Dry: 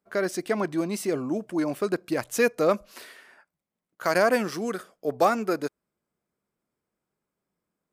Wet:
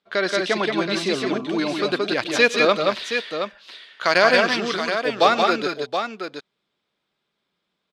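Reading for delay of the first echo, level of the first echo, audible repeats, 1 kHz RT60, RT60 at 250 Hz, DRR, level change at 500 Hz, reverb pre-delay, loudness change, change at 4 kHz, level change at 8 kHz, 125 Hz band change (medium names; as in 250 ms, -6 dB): 106 ms, -19.5 dB, 3, no reverb, no reverb, no reverb, +5.0 dB, no reverb, +6.0 dB, +17.0 dB, +2.5 dB, +2.0 dB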